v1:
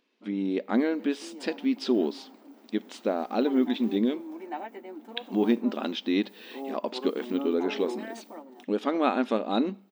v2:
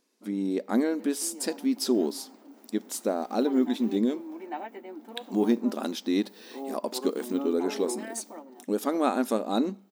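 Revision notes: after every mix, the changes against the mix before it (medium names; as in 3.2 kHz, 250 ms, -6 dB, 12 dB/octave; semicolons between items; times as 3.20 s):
speech: remove resonant low-pass 3 kHz, resonance Q 2.2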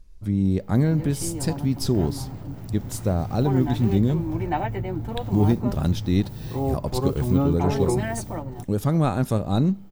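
background +10.0 dB; master: remove brick-wall FIR high-pass 210 Hz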